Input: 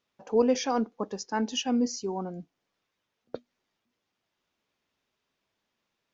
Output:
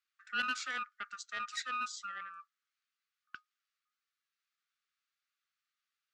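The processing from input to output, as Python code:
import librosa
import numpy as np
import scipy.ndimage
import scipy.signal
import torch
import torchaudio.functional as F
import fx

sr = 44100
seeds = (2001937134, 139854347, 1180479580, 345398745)

y = x * np.sin(2.0 * np.pi * 1000.0 * np.arange(len(x)) / sr)
y = fx.brickwall_highpass(y, sr, low_hz=1100.0)
y = fx.doppler_dist(y, sr, depth_ms=0.14)
y = F.gain(torch.from_numpy(y), -5.0).numpy()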